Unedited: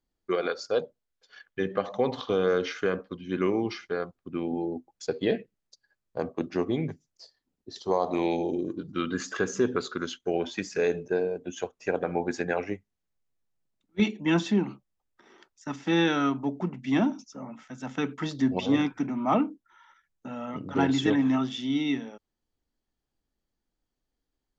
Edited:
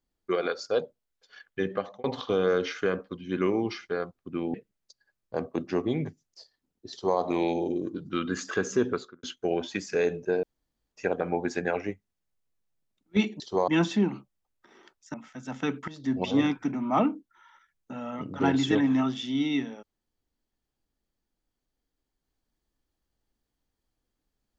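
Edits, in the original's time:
1.71–2.04 fade out linear
4.54–5.37 cut
7.74–8.02 copy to 14.23
9.7–10.06 studio fade out
11.26–11.75 room tone
15.69–17.49 cut
18.23–18.59 fade in linear, from -17 dB

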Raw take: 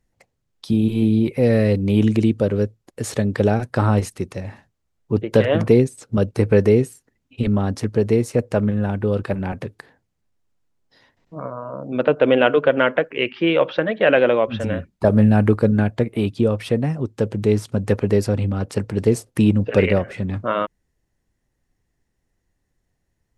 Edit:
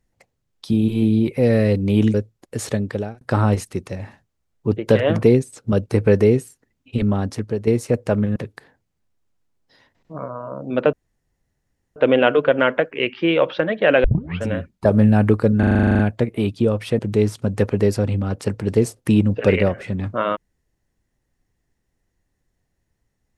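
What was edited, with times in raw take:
2.14–2.59 cut
3.13–3.66 fade out
7.45–8.12 fade out equal-power, to -9 dB
8.81–9.58 cut
12.15 insert room tone 1.03 s
14.23 tape start 0.39 s
15.78 stutter 0.04 s, 11 plays
16.78–17.29 cut

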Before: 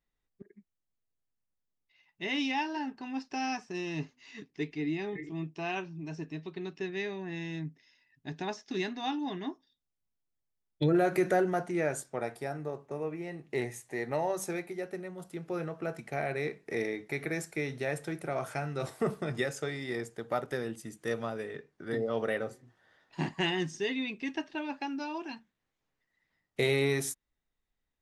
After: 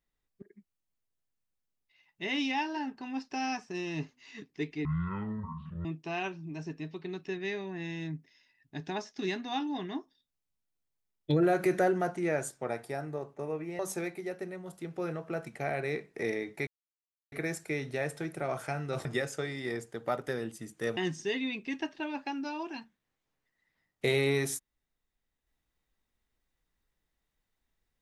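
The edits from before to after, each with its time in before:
4.85–5.37 speed 52%
13.31–14.31 cut
17.19 insert silence 0.65 s
18.92–19.29 cut
21.21–23.52 cut

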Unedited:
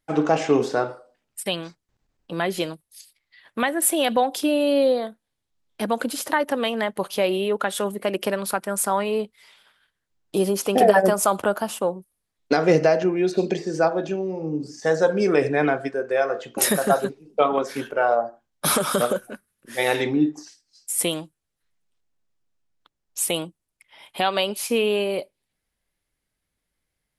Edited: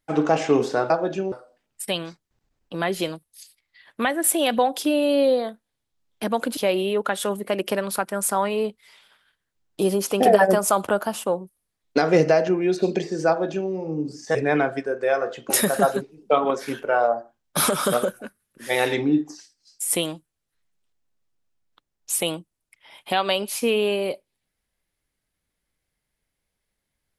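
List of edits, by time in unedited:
6.15–7.12 cut
13.83–14.25 copy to 0.9
14.9–15.43 cut

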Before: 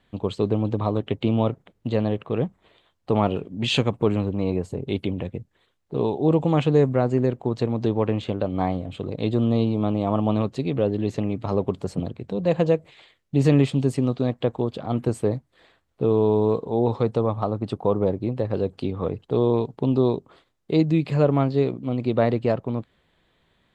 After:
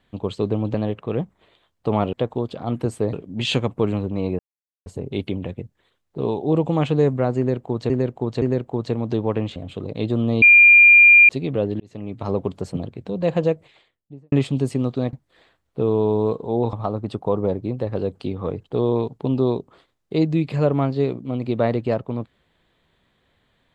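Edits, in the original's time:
0.74–1.97 cut
4.62 insert silence 0.47 s
7.14–7.66 loop, 3 plays
8.28–8.79 cut
9.65–10.52 bleep 2400 Hz -6.5 dBFS
11.03–11.52 fade in linear
12.72–13.55 studio fade out
14.36–15.36 move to 3.36
16.96–17.31 cut

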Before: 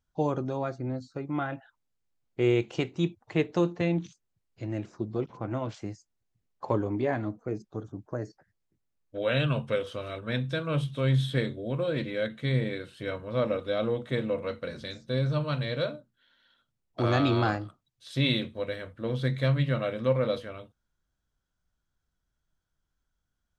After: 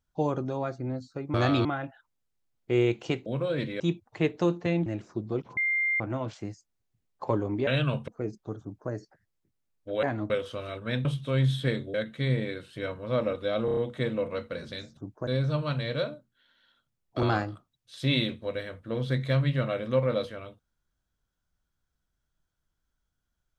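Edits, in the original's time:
4.01–4.7 cut
5.41 add tone 2100 Hz -23.5 dBFS 0.43 s
7.08–7.35 swap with 9.3–9.71
7.88–8.18 copy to 15.09
10.46–10.75 cut
11.64–12.18 move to 2.95
13.89 stutter 0.03 s, 5 plays
17.05–17.36 move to 1.34

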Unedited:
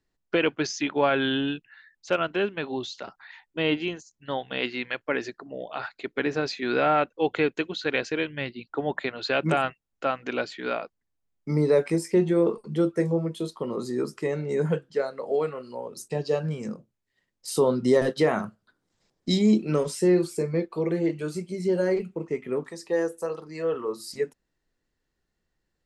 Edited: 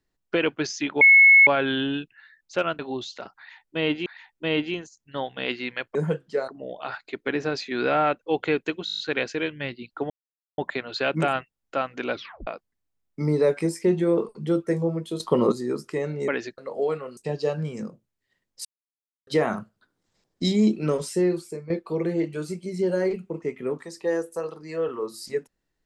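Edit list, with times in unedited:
1.01 add tone 2190 Hz -9.5 dBFS 0.46 s
2.33–2.61 cut
3.2–3.88 loop, 2 plays
5.09–5.39 swap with 14.57–15.1
7.76 stutter 0.02 s, 8 plays
8.87 insert silence 0.48 s
10.42 tape stop 0.34 s
13.49–13.81 gain +10.5 dB
15.69–16.03 cut
17.51–18.13 mute
19.94–20.56 fade out, to -12.5 dB

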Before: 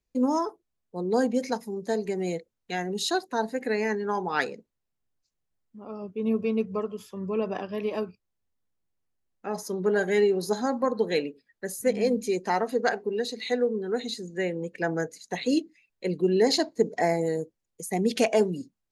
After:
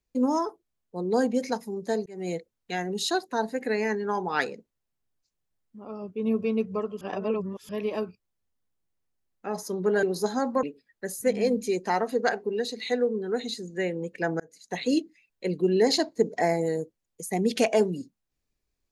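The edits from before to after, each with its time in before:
2.06–2.33 fade in
7.01–7.69 reverse
10.03–10.3 cut
10.9–11.23 cut
15–15.37 fade in

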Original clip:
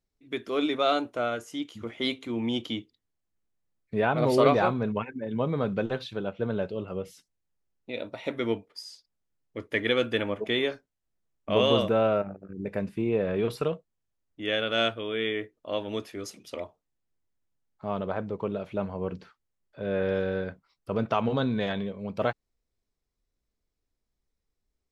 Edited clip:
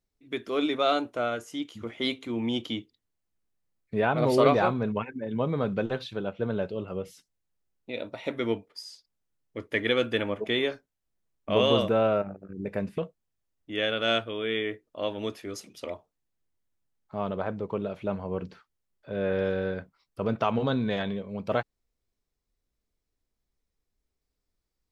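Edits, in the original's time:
12.98–13.68 cut

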